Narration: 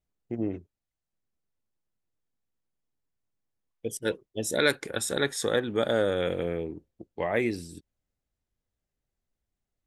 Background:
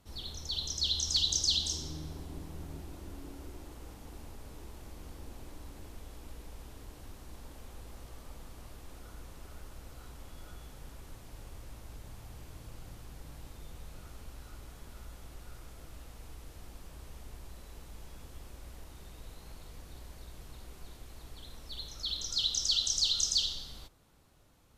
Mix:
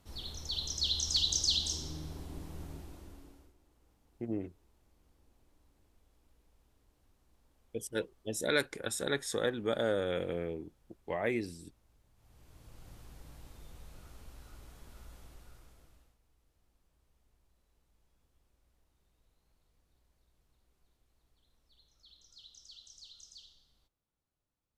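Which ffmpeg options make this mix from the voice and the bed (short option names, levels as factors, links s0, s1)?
-filter_complex "[0:a]adelay=3900,volume=0.501[s0];[1:a]volume=6.31,afade=t=out:st=2.62:d=0.92:silence=0.0944061,afade=t=in:st=12.15:d=0.81:silence=0.141254,afade=t=out:st=15.17:d=1.01:silence=0.0944061[s1];[s0][s1]amix=inputs=2:normalize=0"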